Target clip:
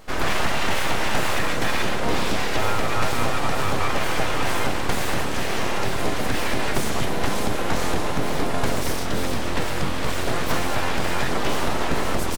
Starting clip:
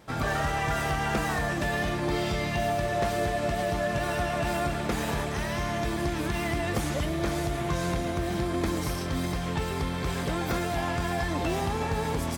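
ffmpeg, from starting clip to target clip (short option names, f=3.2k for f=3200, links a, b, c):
-filter_complex "[0:a]aeval=exprs='abs(val(0))':c=same,asplit=2[a][b];[b]asetrate=33038,aresample=44100,atempo=1.33484,volume=-9dB[c];[a][c]amix=inputs=2:normalize=0,volume=7.5dB"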